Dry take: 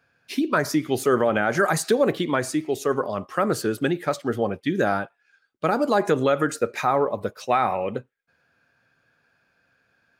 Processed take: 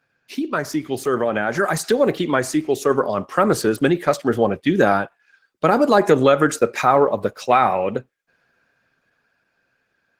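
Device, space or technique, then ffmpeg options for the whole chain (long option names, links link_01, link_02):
video call: -af "highpass=100,dynaudnorm=framelen=330:gausssize=13:maxgain=14.5dB,volume=-1dB" -ar 48000 -c:a libopus -b:a 16k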